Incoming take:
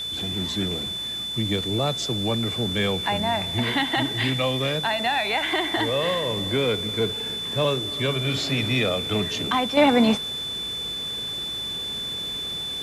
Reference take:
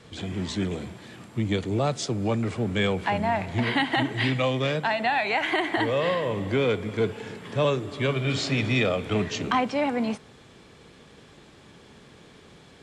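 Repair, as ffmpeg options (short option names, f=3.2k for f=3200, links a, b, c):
-af "bandreject=f=54.9:t=h:w=4,bandreject=f=109.8:t=h:w=4,bandreject=f=164.7:t=h:w=4,bandreject=f=219.6:t=h:w=4,bandreject=f=3.5k:w=30,afwtdn=0.0063,asetnsamples=n=441:p=0,asendcmd='9.77 volume volume -8.5dB',volume=0dB"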